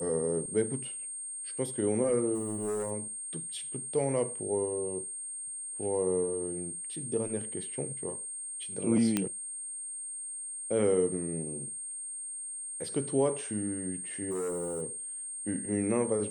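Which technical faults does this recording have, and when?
whine 8.6 kHz -37 dBFS
2.34–2.92 s: clipped -29.5 dBFS
9.17 s: pop -13 dBFS
14.30–14.83 s: clipped -30.5 dBFS

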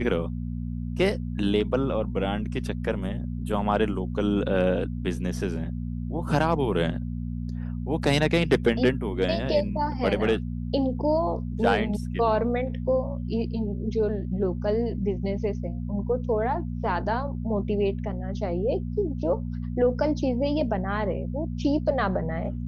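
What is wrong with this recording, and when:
hum 60 Hz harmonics 4 -31 dBFS

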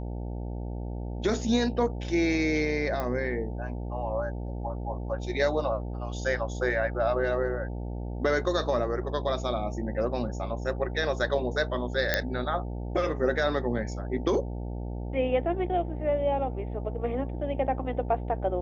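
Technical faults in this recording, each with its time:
buzz 60 Hz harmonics 15 -34 dBFS
3.00 s: pop -18 dBFS
12.14 s: pop -9 dBFS

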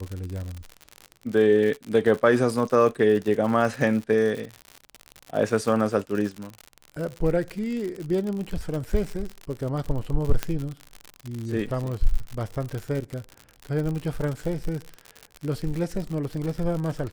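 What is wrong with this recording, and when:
crackle 78 per s -29 dBFS
10.43 s: pop -9 dBFS

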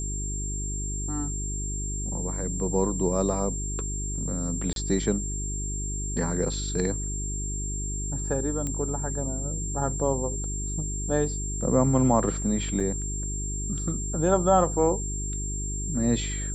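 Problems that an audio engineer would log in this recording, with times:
hum 50 Hz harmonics 8 -32 dBFS
whine 7.4 kHz -33 dBFS
4.73–4.76 s: dropout 32 ms
8.67 s: pop -18 dBFS
12.80–12.81 s: dropout 5.3 ms

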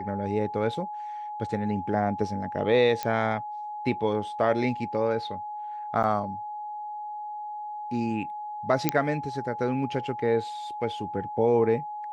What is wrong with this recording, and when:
whine 840 Hz -33 dBFS
3.03 s: pop -14 dBFS
6.03–6.04 s: dropout 8.7 ms
8.89 s: pop -6 dBFS

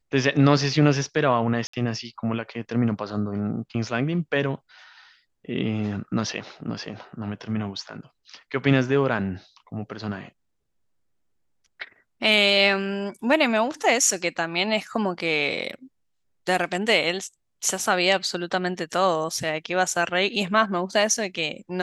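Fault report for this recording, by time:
1.67–1.73 s: dropout 64 ms

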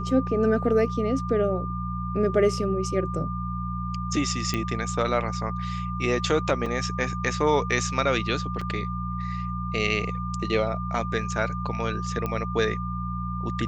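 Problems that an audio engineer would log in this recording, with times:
hum 60 Hz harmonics 3 -31 dBFS
whine 1.2 kHz -33 dBFS
4.54 s: pop -13 dBFS
6.66 s: dropout 4.3 ms
8.61 s: dropout 4.7 ms
12.26 s: pop -16 dBFS

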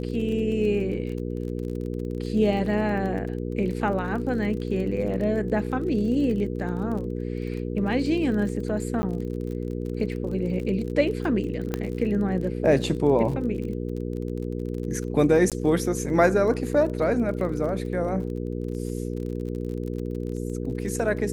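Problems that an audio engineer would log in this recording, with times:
crackle 32 per s -33 dBFS
hum 60 Hz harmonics 8 -30 dBFS
9.02–9.03 s: dropout 10 ms
11.74 s: pop -12 dBFS
15.50–15.52 s: dropout 17 ms

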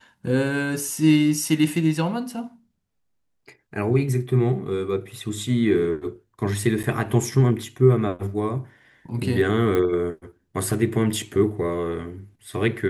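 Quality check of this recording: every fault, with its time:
6.83–6.84 s: dropout 7.9 ms
9.75 s: pop -13 dBFS

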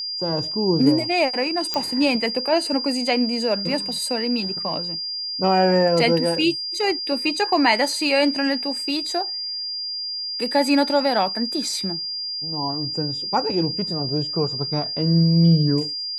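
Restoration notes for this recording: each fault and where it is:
whine 4.8 kHz -26 dBFS
1.74 s: pop -9 dBFS

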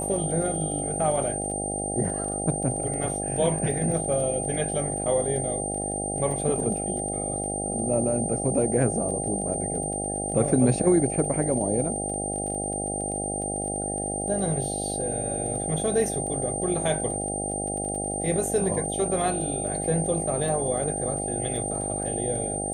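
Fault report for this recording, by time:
buzz 50 Hz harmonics 16 -32 dBFS
crackle 18 per s -34 dBFS
whine 8.8 kHz -30 dBFS

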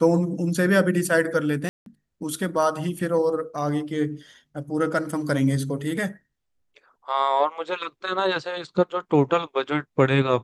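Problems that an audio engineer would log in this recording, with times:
1.69–1.86 s: dropout 172 ms

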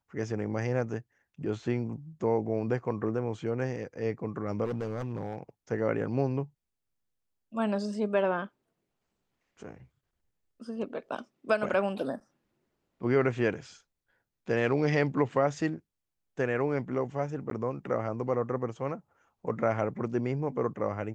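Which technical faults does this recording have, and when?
4.64–5.38 s: clipped -28 dBFS
17.50–17.51 s: dropout

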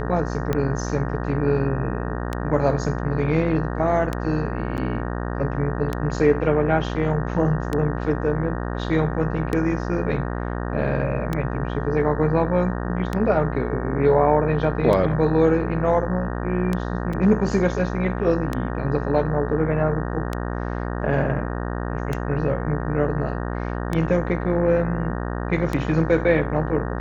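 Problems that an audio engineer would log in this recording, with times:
buzz 60 Hz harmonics 31 -27 dBFS
tick 33 1/3 rpm -11 dBFS
4.77–4.78 s: dropout 9.2 ms
17.13 s: dropout 4 ms

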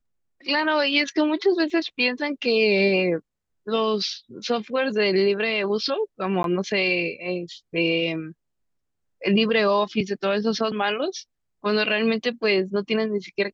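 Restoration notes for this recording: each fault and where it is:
1.70 s: dropout 2.1 ms
6.43–6.44 s: dropout 12 ms

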